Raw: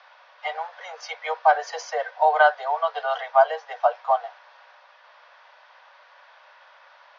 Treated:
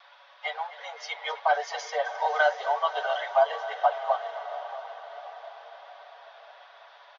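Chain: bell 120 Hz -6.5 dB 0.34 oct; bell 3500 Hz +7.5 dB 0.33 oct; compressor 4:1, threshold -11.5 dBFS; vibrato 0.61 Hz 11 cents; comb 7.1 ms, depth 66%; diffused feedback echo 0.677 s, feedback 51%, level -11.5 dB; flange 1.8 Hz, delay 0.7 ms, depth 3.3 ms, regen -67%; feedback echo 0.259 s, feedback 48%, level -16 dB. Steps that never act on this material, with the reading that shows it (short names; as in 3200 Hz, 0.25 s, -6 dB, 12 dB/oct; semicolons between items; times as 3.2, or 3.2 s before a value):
bell 120 Hz: input band starts at 430 Hz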